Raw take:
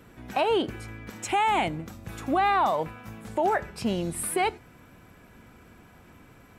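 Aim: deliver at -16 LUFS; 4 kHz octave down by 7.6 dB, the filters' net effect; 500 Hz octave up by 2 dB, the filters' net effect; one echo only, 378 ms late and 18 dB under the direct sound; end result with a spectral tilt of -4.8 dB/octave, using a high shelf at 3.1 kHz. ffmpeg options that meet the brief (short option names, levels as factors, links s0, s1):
-af "equalizer=f=500:t=o:g=3,highshelf=f=3100:g=-6.5,equalizer=f=4000:t=o:g=-6.5,aecho=1:1:378:0.126,volume=3.35"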